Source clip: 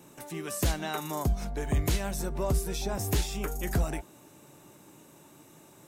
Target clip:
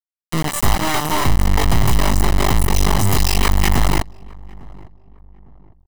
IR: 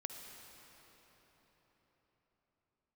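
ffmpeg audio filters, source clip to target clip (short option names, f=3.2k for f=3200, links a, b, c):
-filter_complex "[0:a]asettb=1/sr,asplit=3[a][b][c];[a]atrim=end=3.264[d];[b]atrim=start=3.26:end=3.71,asetpts=PTS-STARTPTS,afade=t=in:d=0.004:c=qsin,afade=t=out:st=0.446:d=0.004:c=qsin,equalizer=f=250:t=o:w=0.33:g=-7,equalizer=f=1k:t=o:w=0.33:g=11,equalizer=f=1.6k:t=o:w=0.33:g=7,equalizer=f=2.5k:t=o:w=0.33:g=10,equalizer=f=5k:t=o:w=0.33:g=10[e];[c]atrim=start=3.706[f];[d][e]acrossfade=d=0.004:c1=hsin:c2=qsin[g];[g][f]acrossfade=d=0.004:c1=qsin:c2=hsin,acrossover=split=870[h][i];[h]dynaudnorm=f=230:g=3:m=4dB[j];[j][i]amix=inputs=2:normalize=0,asettb=1/sr,asplit=3[k][l][m];[k]atrim=end=0.584[n];[l]atrim=start=0.58:end=2.4,asetpts=PTS-STARTPTS,afade=t=in:d=0.004:c=qsin,afade=t=out:st=1.816:d=0.004:c=qsin,aeval=exprs='max(val(0),0)':c=same[o];[m]atrim=start=2.396[p];[n][o]acrossfade=d=0.004:c1=hsin:c2=qsin[q];[q][p]acrossfade=d=0.004:c1=qsin:c2=hsin,afftdn=nr=13:nf=-36,flanger=delay=17:depth=6:speed=0.45,acrusher=bits=3:dc=4:mix=0:aa=0.000001,apsyclip=28.5dB,asoftclip=type=tanh:threshold=-11.5dB,aecho=1:1:1:0.5,asplit=2[r][s];[s]adelay=854,lowpass=f=900:p=1,volume=-22dB,asplit=2[t][u];[u]adelay=854,lowpass=f=900:p=1,volume=0.4,asplit=2[v][w];[w]adelay=854,lowpass=f=900:p=1,volume=0.4[x];[t][v][x]amix=inputs=3:normalize=0[y];[r][y]amix=inputs=2:normalize=0"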